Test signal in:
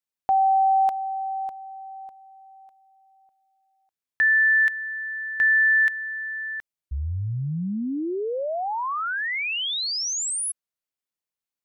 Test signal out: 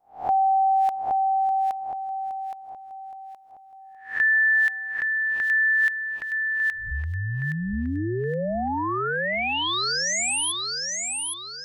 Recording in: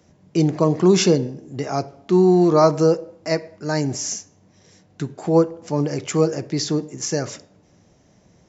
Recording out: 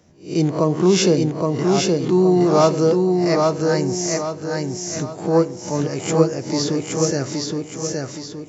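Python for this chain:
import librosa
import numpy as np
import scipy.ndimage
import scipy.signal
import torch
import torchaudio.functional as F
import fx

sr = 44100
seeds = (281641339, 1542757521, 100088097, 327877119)

y = fx.spec_swells(x, sr, rise_s=0.35)
y = fx.echo_feedback(y, sr, ms=819, feedback_pct=41, wet_db=-3)
y = y * librosa.db_to_amplitude(-1.0)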